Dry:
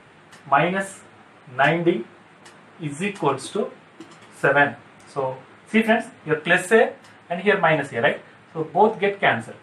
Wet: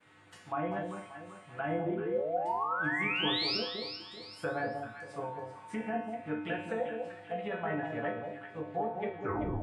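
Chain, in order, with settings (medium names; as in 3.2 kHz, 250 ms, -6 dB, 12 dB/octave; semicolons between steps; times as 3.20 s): tape stop on the ending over 0.53 s; expander -46 dBFS; bass shelf 420 Hz +6 dB; peak limiter -9.5 dBFS, peak gain reduction 8 dB; low-pass that closes with the level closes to 1.7 kHz, closed at -15.5 dBFS; painted sound rise, 1.89–3.58 s, 330–5500 Hz -19 dBFS; feedback comb 100 Hz, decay 0.73 s, harmonics odd, mix 90%; echo whose repeats swap between lows and highs 194 ms, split 960 Hz, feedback 55%, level -4 dB; tape noise reduction on one side only encoder only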